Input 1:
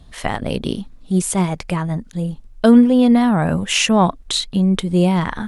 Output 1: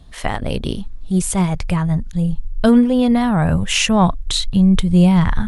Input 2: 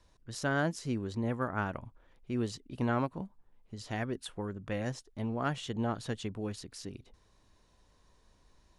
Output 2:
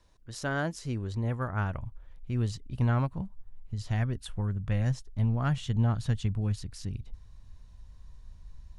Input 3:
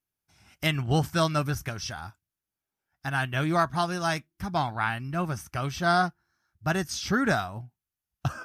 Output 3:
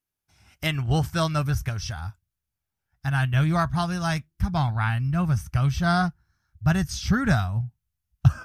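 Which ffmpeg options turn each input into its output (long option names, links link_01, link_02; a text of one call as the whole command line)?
ffmpeg -i in.wav -af "asubboost=boost=11:cutoff=110" out.wav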